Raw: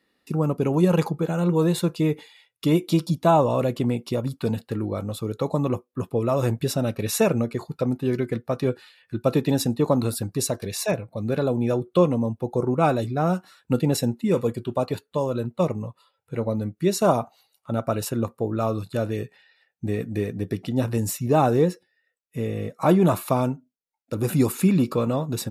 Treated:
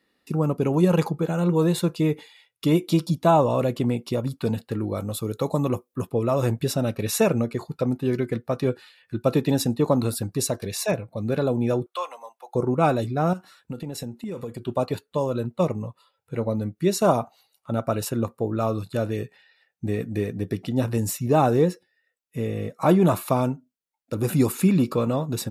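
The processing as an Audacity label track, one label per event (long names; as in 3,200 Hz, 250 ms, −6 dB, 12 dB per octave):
4.870000	6.070000	high-shelf EQ 7,100 Hz +10 dB
11.860000	12.550000	high-pass filter 800 Hz 24 dB per octave
13.330000	14.680000	downward compressor 16 to 1, threshold −28 dBFS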